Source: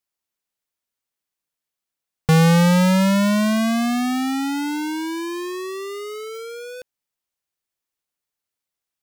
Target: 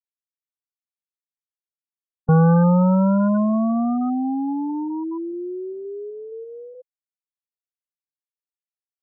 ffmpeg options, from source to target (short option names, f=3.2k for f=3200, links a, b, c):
-af "lowpass=f=1.6k:w=0.5412,lowpass=f=1.6k:w=1.3066,afftfilt=real='re*gte(hypot(re,im),0.2)':imag='im*gte(hypot(re,im),0.2)':win_size=1024:overlap=0.75"